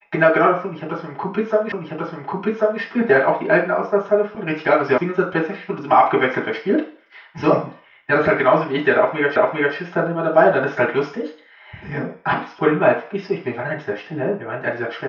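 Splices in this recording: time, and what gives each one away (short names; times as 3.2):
1.72 repeat of the last 1.09 s
4.98 sound cut off
9.36 repeat of the last 0.4 s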